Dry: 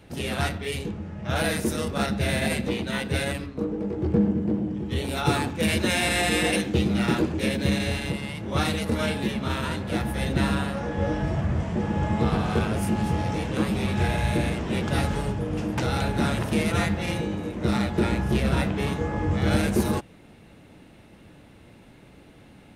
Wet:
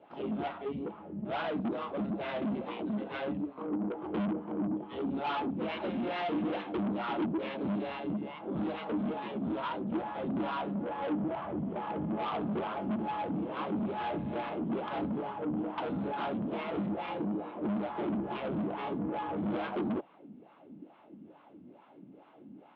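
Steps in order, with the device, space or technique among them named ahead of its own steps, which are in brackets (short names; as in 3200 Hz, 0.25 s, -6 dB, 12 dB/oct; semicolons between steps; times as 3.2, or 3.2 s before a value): wah-wah guitar rig (wah 2.3 Hz 210–1100 Hz, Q 3.2; tube stage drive 36 dB, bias 0.3; speaker cabinet 100–3600 Hz, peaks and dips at 110 Hz -8 dB, 300 Hz +3 dB, 480 Hz -4 dB, 1800 Hz -5 dB, 3200 Hz +6 dB); gain +6.5 dB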